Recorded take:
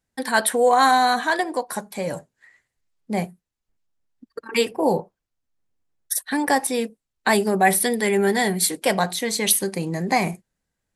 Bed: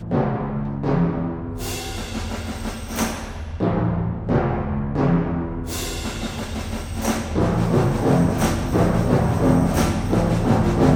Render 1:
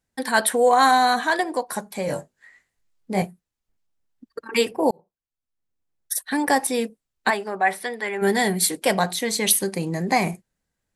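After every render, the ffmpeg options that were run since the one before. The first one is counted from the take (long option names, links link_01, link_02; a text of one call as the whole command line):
ffmpeg -i in.wav -filter_complex "[0:a]asettb=1/sr,asplit=3[link_01][link_02][link_03];[link_01]atrim=end=2.064[link_04];[link_02]atrim=start=2.06:end=3.22,asetpts=PTS-STARTPTS,afade=type=in:duration=0.004:curve=qsin,afade=type=out:start_time=1.156:duration=0.004:curve=qsin,asplit=2[link_05][link_06];[link_06]adelay=21,volume=-2.5dB[link_07];[link_05][link_07]amix=inputs=2:normalize=0,atrim=end_sample=51156[link_08];[link_03]atrim=start=3.216[link_09];[link_04][link_08]acrossfade=duration=0.004:curve1=hsin:curve2=qsin[link_10];[link_10][link_09]acrossfade=duration=0.004:curve1=qsin:curve2=hsin,asplit=3[link_11][link_12][link_13];[link_11]afade=type=out:start_time=7.29:duration=0.02[link_14];[link_12]bandpass=frequency=1300:width_type=q:width=0.89,afade=type=in:start_time=7.29:duration=0.02,afade=type=out:start_time=8.21:duration=0.02[link_15];[link_13]afade=type=in:start_time=8.21:duration=0.02[link_16];[link_14][link_15][link_16]amix=inputs=3:normalize=0,asplit=2[link_17][link_18];[link_17]atrim=end=4.91,asetpts=PTS-STARTPTS,afade=type=out:start_time=4.906:duration=0.004:curve=hsin[link_19];[link_18]atrim=start=4.91,asetpts=PTS-STARTPTS,afade=type=in:duration=1.5[link_20];[link_19][link_20]concat=n=2:v=0:a=1" out.wav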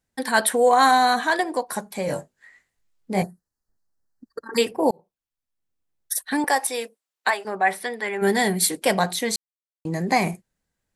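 ffmpeg -i in.wav -filter_complex "[0:a]asettb=1/sr,asplit=3[link_01][link_02][link_03];[link_01]atrim=end=3.234[link_04];[link_02]atrim=start=3.23:end=4.58,asetpts=PTS-STARTPTS,afade=type=in:duration=0.004:curve=qsin,afade=type=out:start_time=1.346:duration=0.004:curve=qsin,asuperstop=centerf=2800:order=12:qfactor=1.3[link_05];[link_03]atrim=start=4.576[link_06];[link_04][link_05]acrossfade=duration=0.004:curve1=hsin:curve2=qsin[link_07];[link_07][link_06]acrossfade=duration=0.004:curve1=qsin:curve2=hsin,asettb=1/sr,asplit=3[link_08][link_09][link_10];[link_08]atrim=end=6.444[link_11];[link_09]atrim=start=6.44:end=7.45,asetpts=PTS-STARTPTS,afade=type=in:duration=0.004:curve=qsin,afade=type=out:start_time=1.006:duration=0.004:curve=qsin,highpass=540[link_12];[link_10]atrim=start=7.446[link_13];[link_11][link_12]acrossfade=duration=0.004:curve1=hsin:curve2=qsin[link_14];[link_14][link_13]acrossfade=duration=0.004:curve1=qsin:curve2=hsin,asplit=3[link_15][link_16][link_17];[link_15]atrim=end=9.36,asetpts=PTS-STARTPTS,afade=type=out:start_time=9.356:duration=0.004:curve=hsin[link_18];[link_16]atrim=start=9.36:end=9.85,asetpts=PTS-STARTPTS,volume=0[link_19];[link_17]atrim=start=9.85,asetpts=PTS-STARTPTS,afade=type=in:duration=0.004:curve=hsin[link_20];[link_18][link_19][link_20]concat=n=3:v=0:a=1" out.wav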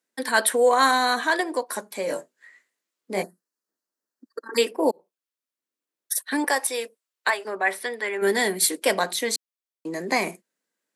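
ffmpeg -i in.wav -af "highpass=frequency=260:width=0.5412,highpass=frequency=260:width=1.3066,equalizer=frequency=780:width=5.7:gain=-8" out.wav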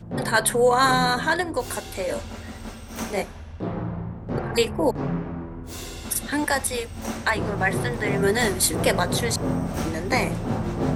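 ffmpeg -i in.wav -i bed.wav -filter_complex "[1:a]volume=-8.5dB[link_01];[0:a][link_01]amix=inputs=2:normalize=0" out.wav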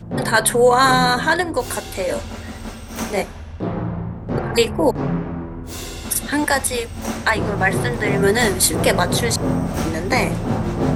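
ffmpeg -i in.wav -af "volume=5dB,alimiter=limit=-2dB:level=0:latency=1" out.wav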